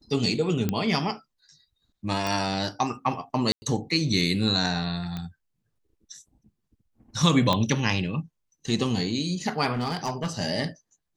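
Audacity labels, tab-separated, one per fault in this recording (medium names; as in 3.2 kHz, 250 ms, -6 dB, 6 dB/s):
0.690000	0.690000	pop -12 dBFS
2.270000	2.270000	pop
3.520000	3.620000	dropout 100 ms
5.170000	5.170000	pop -20 dBFS
7.530000	7.530000	pop -10 dBFS
9.730000	10.270000	clipped -23 dBFS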